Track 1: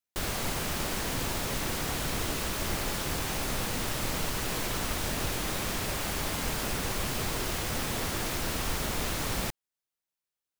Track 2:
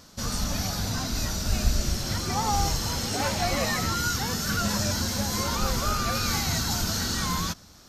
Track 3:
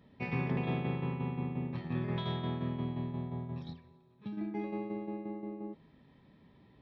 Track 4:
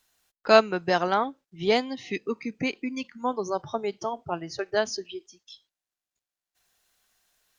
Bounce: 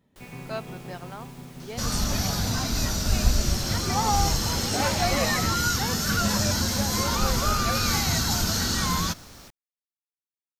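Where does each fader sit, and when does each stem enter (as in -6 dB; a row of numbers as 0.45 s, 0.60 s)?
-18.0 dB, +2.5 dB, -6.5 dB, -17.0 dB; 0.00 s, 1.60 s, 0.00 s, 0.00 s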